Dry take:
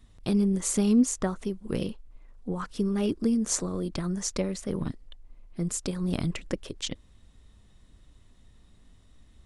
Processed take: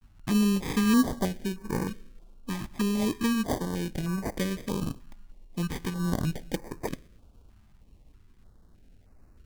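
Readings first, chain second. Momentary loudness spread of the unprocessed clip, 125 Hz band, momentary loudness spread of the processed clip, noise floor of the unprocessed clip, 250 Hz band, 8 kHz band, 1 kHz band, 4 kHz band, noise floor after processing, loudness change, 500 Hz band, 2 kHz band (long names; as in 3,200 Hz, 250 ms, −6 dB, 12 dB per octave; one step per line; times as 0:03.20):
13 LU, +0.5 dB, 13 LU, −57 dBFS, 0.0 dB, −8.0 dB, +5.0 dB, +0.5 dB, −58 dBFS, −0.5 dB, −2.0 dB, +6.5 dB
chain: coupled-rooms reverb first 0.57 s, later 2.6 s, from −19 dB, DRR 15 dB
decimation without filtering 32×
pitch vibrato 0.44 Hz 57 cents
notch on a step sequencer 3.2 Hz 480–3,300 Hz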